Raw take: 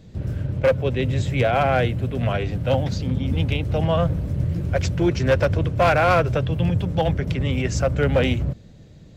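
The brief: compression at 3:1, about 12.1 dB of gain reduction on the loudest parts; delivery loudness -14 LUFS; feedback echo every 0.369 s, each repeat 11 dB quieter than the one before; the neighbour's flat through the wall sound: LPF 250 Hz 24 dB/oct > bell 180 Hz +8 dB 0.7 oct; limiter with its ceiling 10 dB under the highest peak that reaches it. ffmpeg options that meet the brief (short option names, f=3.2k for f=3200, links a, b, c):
-af "acompressor=threshold=-31dB:ratio=3,alimiter=level_in=4.5dB:limit=-24dB:level=0:latency=1,volume=-4.5dB,lowpass=f=250:w=0.5412,lowpass=f=250:w=1.3066,equalizer=f=180:t=o:w=0.7:g=8,aecho=1:1:369|738|1107:0.282|0.0789|0.0221,volume=20.5dB"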